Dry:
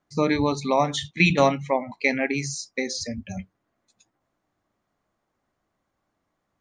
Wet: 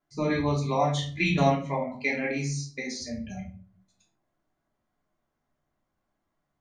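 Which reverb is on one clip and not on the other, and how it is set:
rectangular room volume 340 cubic metres, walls furnished, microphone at 3.1 metres
level −10 dB

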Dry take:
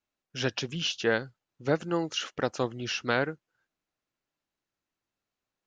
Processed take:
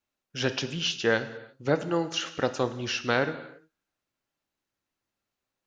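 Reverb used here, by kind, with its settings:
reverb whose tail is shaped and stops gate 370 ms falling, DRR 9.5 dB
level +1.5 dB

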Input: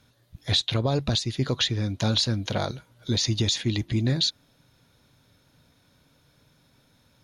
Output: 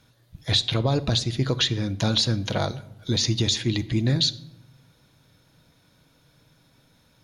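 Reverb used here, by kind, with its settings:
rectangular room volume 2,300 cubic metres, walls furnished, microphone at 0.64 metres
level +1.5 dB

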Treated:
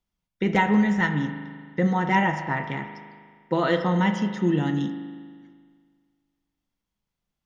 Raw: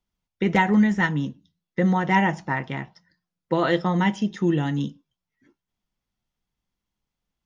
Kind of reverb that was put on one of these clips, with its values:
spring reverb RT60 1.8 s, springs 39 ms, chirp 45 ms, DRR 7 dB
level −1.5 dB

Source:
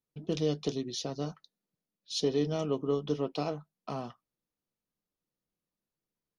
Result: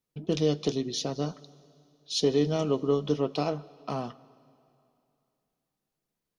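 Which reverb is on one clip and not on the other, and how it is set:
dense smooth reverb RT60 2.7 s, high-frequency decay 0.95×, DRR 19.5 dB
level +4.5 dB

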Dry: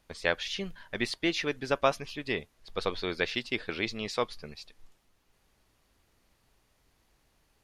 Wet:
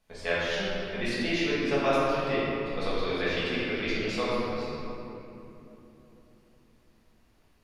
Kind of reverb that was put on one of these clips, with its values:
rectangular room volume 180 cubic metres, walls hard, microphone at 1.5 metres
level −8 dB

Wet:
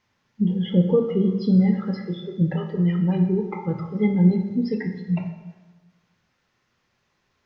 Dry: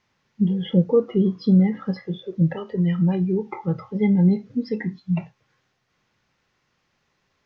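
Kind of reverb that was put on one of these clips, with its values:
dense smooth reverb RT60 1.3 s, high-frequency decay 0.75×, DRR 5 dB
level −1.5 dB

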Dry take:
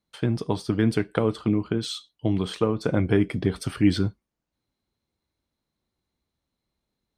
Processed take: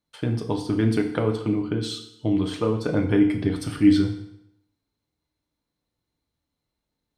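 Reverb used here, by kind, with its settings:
feedback delay network reverb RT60 0.79 s, low-frequency decay 0.95×, high-frequency decay 0.9×, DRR 3.5 dB
level −2 dB

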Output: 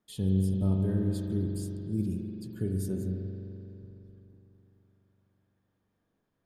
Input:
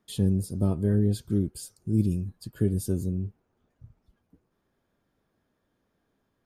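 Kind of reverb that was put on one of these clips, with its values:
spring reverb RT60 3.3 s, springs 42 ms, chirp 45 ms, DRR 1.5 dB
level −7 dB

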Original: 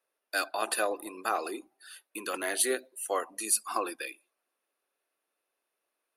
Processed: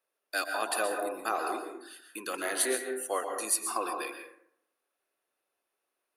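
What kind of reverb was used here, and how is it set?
dense smooth reverb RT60 0.72 s, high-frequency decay 0.4×, pre-delay 110 ms, DRR 4 dB
level −1.5 dB

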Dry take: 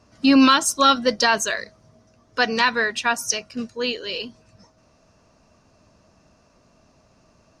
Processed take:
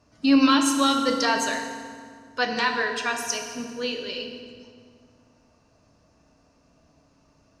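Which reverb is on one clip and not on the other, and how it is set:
feedback delay network reverb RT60 2 s, low-frequency decay 1.4×, high-frequency decay 0.75×, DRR 3 dB
level −6 dB

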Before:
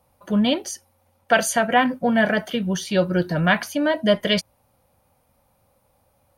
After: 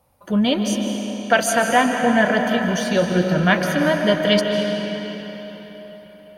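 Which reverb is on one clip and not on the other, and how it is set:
comb and all-pass reverb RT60 4.3 s, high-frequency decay 0.8×, pre-delay 110 ms, DRR 3 dB
level +1 dB

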